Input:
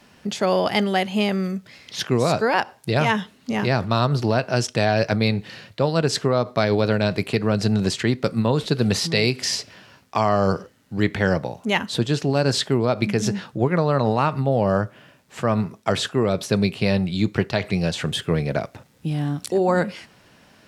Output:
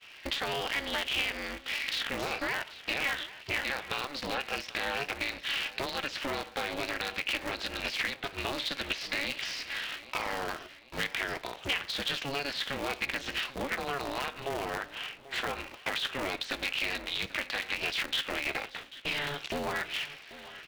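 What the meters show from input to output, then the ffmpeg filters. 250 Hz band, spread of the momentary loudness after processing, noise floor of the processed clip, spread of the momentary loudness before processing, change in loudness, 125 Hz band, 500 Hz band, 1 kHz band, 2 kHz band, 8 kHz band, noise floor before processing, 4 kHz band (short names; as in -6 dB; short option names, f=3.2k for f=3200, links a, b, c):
-20.0 dB, 5 LU, -51 dBFS, 7 LU, -11.0 dB, -25.5 dB, -17.0 dB, -11.5 dB, -3.5 dB, -11.0 dB, -55 dBFS, -4.0 dB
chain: -af "afftfilt=real='re*pow(10,6/40*sin(2*PI*(0.87*log(max(b,1)*sr/1024/100)/log(2)-(-1.8)*(pts-256)/sr)))':imag='im*pow(10,6/40*sin(2*PI*(0.87*log(max(b,1)*sr/1024/100)/log(2)-(-1.8)*(pts-256)/sr)))':win_size=1024:overlap=0.75,highpass=550,agate=range=-33dB:threshold=-48dB:ratio=3:detection=peak,deesser=0.7,highshelf=f=1.5k:t=q:w=1.5:g=7,acompressor=threshold=-34dB:ratio=6,asoftclip=type=tanh:threshold=-27.5dB,lowpass=f=3.2k:t=q:w=1.7,aecho=1:1:789|1578|2367|3156:0.141|0.0607|0.0261|0.0112,aeval=exprs='val(0)*sgn(sin(2*PI*140*n/s))':c=same,volume=3dB"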